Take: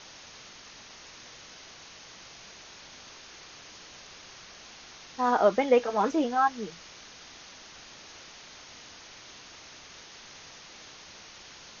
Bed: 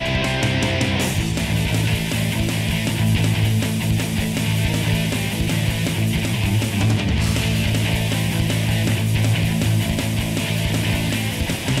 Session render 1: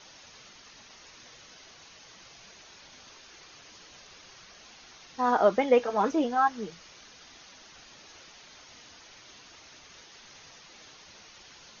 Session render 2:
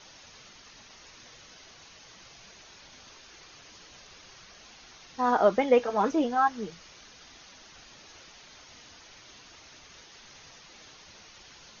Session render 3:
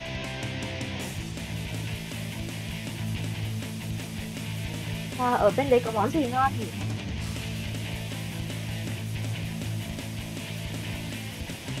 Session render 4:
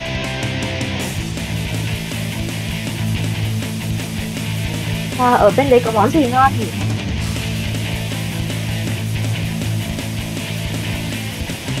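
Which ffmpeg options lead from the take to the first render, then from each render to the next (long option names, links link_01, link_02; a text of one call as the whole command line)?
ffmpeg -i in.wav -af "afftdn=noise_reduction=6:noise_floor=-49" out.wav
ffmpeg -i in.wav -af "lowshelf=frequency=110:gain=5" out.wav
ffmpeg -i in.wav -i bed.wav -filter_complex "[1:a]volume=-13.5dB[link_01];[0:a][link_01]amix=inputs=2:normalize=0" out.wav
ffmpeg -i in.wav -af "volume=11.5dB,alimiter=limit=-1dB:level=0:latency=1" out.wav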